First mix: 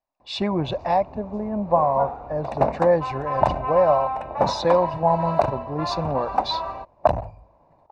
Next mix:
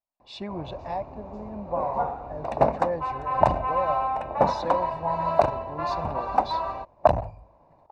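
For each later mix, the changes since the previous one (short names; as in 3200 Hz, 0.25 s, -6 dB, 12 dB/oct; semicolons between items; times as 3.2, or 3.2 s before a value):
speech -11.0 dB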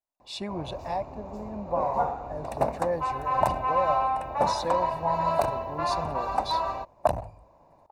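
second sound -6.0 dB; master: remove air absorption 150 m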